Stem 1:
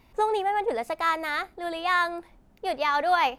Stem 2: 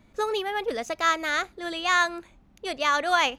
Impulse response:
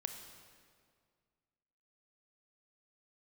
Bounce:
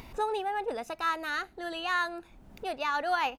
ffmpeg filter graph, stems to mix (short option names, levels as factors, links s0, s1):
-filter_complex "[0:a]acompressor=mode=upward:threshold=0.0355:ratio=2.5,volume=0.531,asplit=2[s0][s1];[1:a]equalizer=f=2700:w=0.48:g=6.5,adelay=0.5,volume=0.335[s2];[s1]apad=whole_len=149101[s3];[s2][s3]sidechaincompress=threshold=0.0141:ratio=8:attack=16:release=347[s4];[s0][s4]amix=inputs=2:normalize=0"